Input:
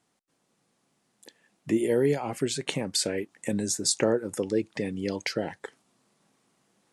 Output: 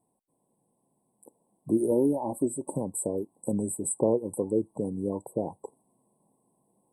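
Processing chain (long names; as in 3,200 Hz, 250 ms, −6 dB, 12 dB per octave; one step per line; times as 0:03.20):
linear-phase brick-wall band-stop 1,100–7,700 Hz
0:01.91–0:02.77: comb filter 3.4 ms, depth 61%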